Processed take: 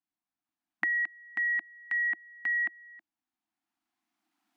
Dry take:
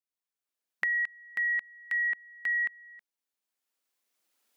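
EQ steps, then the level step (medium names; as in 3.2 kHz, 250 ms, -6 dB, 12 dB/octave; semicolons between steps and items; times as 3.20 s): elliptic band-stop 330–700 Hz; low-pass 2.4 kHz 6 dB/octave; peaking EQ 340 Hz +12.5 dB 2.8 oct; 0.0 dB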